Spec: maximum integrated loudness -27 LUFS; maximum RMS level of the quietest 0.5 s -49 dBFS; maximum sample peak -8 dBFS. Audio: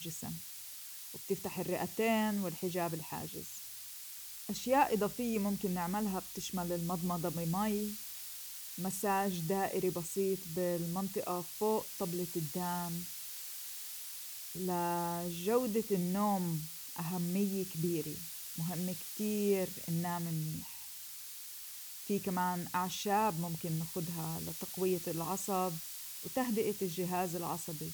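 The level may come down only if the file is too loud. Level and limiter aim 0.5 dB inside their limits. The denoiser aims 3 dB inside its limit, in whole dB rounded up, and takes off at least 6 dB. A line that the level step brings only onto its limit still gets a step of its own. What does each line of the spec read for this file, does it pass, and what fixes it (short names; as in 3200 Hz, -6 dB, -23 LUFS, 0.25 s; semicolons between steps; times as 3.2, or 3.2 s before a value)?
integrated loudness -36.5 LUFS: OK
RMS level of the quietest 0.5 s -48 dBFS: fail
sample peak -17.0 dBFS: OK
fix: denoiser 6 dB, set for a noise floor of -48 dBFS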